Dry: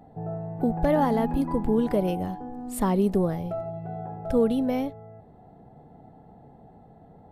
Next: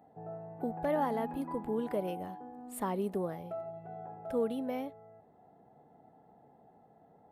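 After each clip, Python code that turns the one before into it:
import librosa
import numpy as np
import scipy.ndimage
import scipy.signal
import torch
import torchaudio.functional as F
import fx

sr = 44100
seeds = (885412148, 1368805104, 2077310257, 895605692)

y = fx.highpass(x, sr, hz=430.0, slope=6)
y = fx.peak_eq(y, sr, hz=5300.0, db=-7.5, octaves=1.2)
y = y * 10.0 ** (-6.0 / 20.0)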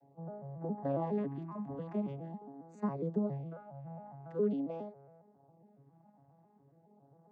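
y = fx.vocoder_arp(x, sr, chord='minor triad', root=49, every_ms=137)
y = fx.filter_lfo_notch(y, sr, shape='sine', hz=0.44, low_hz=380.0, high_hz=3300.0, q=1.6)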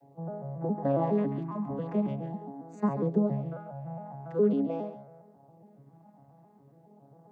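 y = x + 10.0 ** (-11.0 / 20.0) * np.pad(x, (int(138 * sr / 1000.0), 0))[:len(x)]
y = y * 10.0 ** (7.0 / 20.0)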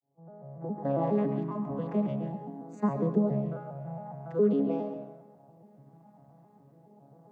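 y = fx.fade_in_head(x, sr, length_s=1.21)
y = fx.rev_freeverb(y, sr, rt60_s=1.0, hf_ratio=0.75, predelay_ms=70, drr_db=10.0)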